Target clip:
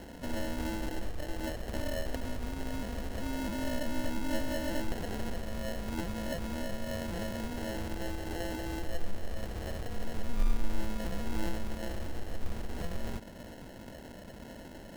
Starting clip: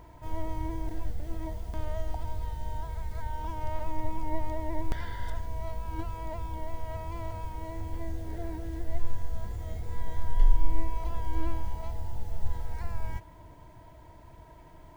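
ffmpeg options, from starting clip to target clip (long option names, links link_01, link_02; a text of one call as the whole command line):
ffmpeg -i in.wav -filter_complex "[0:a]bass=frequency=250:gain=-9,treble=frequency=4000:gain=12,asplit=2[link_01][link_02];[link_02]acompressor=threshold=-43dB:ratio=6,volume=2.5dB[link_03];[link_01][link_03]amix=inputs=2:normalize=0,acrusher=samples=37:mix=1:aa=0.000001" out.wav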